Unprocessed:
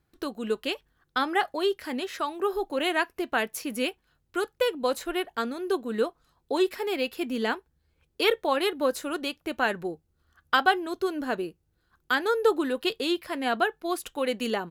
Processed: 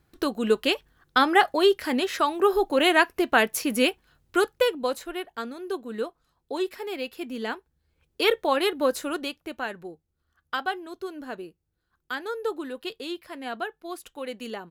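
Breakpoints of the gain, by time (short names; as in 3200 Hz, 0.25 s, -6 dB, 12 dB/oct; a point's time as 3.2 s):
4.41 s +6.5 dB
5.09 s -4 dB
7.4 s -4 dB
8.38 s +2 dB
9.09 s +2 dB
9.7 s -7 dB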